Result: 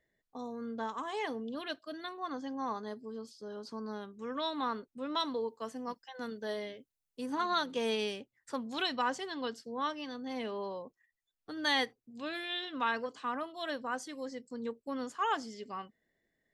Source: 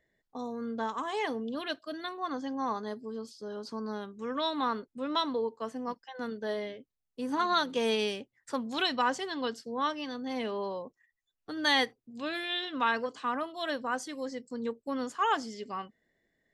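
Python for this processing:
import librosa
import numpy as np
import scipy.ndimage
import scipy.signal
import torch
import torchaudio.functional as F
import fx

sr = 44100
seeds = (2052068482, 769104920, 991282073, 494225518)

y = fx.high_shelf(x, sr, hz=4100.0, db=8.0, at=(5.2, 7.26))
y = y * librosa.db_to_amplitude(-4.0)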